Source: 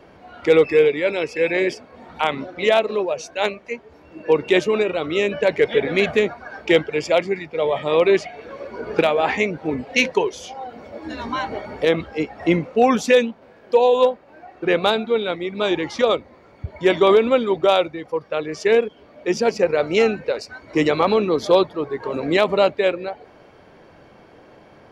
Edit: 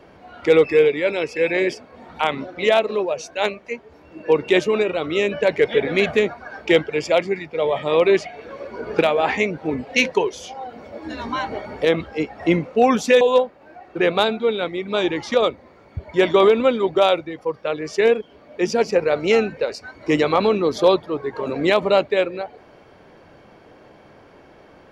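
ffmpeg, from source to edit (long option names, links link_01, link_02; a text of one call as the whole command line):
ffmpeg -i in.wav -filter_complex "[0:a]asplit=2[link_01][link_02];[link_01]atrim=end=13.212[link_03];[link_02]atrim=start=13.878[link_04];[link_03][link_04]acrossfade=duration=0.004:curve1=hsin:curve2=hsin" out.wav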